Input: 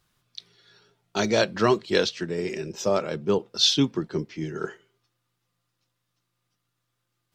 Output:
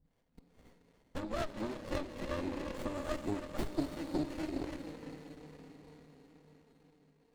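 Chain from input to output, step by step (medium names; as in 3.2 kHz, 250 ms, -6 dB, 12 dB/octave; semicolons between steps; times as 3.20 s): rattle on loud lows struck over -33 dBFS, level -25 dBFS; rippled EQ curve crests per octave 1.1, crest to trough 17 dB; harmonic-percussive split harmonic -6 dB; treble shelf 3.2 kHz -8 dB; compression 8:1, threshold -32 dBFS, peak gain reduction 18.5 dB; harmonic tremolo 2.4 Hz, depth 100%, crossover 420 Hz; formant shift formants +3 st; on a send: echo that smears into a reverb 471 ms, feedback 57%, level -11 dB; on the sum: gated-style reverb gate 360 ms rising, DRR 8 dB; touch-sensitive flanger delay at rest 4.3 ms, full sweep at -17 dBFS; sliding maximum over 33 samples; trim +8.5 dB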